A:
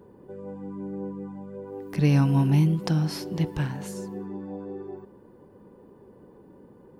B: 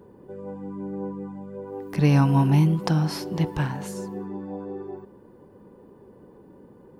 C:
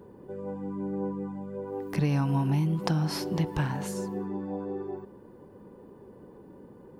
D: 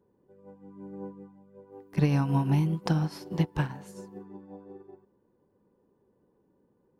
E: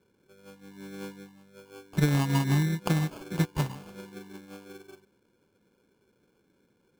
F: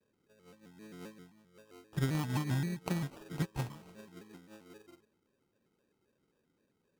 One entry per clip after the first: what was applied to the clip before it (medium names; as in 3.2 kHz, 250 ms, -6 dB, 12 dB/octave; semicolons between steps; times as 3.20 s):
dynamic bell 960 Hz, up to +6 dB, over -45 dBFS, Q 1.1; trim +1.5 dB
compression 6:1, threshold -23 dBFS, peak gain reduction 9 dB
upward expansion 2.5:1, over -38 dBFS; trim +4 dB
sample-and-hold 23×
vibrato with a chosen wave square 3.8 Hz, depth 160 cents; trim -8.5 dB